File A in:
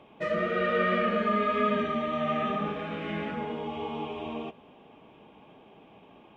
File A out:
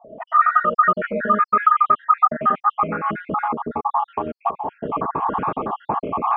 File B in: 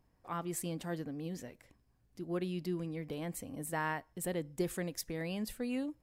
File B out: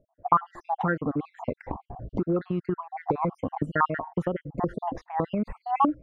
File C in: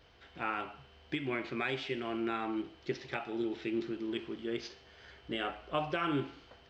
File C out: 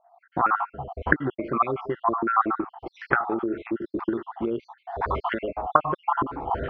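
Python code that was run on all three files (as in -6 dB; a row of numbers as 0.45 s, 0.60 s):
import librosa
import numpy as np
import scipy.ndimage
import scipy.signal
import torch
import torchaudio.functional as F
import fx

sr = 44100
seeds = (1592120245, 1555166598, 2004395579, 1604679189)

y = fx.spec_dropout(x, sr, seeds[0], share_pct=60)
y = fx.recorder_agc(y, sr, target_db=-23.5, rise_db_per_s=51.0, max_gain_db=30)
y = fx.envelope_lowpass(y, sr, base_hz=610.0, top_hz=1400.0, q=6.6, full_db=-27.0, direction='up')
y = y * 10.0 ** (4.0 / 20.0)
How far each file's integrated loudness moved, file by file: +9.0 LU, +10.0 LU, +10.5 LU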